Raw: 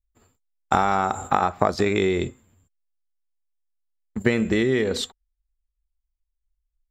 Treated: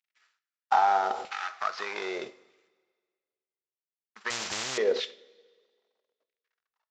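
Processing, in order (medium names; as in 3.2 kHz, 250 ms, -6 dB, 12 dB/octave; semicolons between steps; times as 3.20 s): CVSD coder 32 kbps; LFO high-pass saw down 0.8 Hz 410–2400 Hz; two-slope reverb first 0.39 s, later 1.7 s, from -16 dB, DRR 11 dB; 4.30–4.78 s: spectrum-flattening compressor 10:1; trim -5.5 dB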